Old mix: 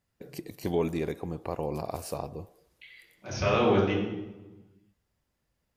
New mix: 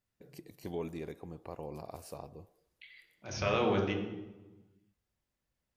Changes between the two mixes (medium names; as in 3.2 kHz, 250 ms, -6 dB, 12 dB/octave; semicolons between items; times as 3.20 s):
first voice -10.5 dB; second voice: send -7.0 dB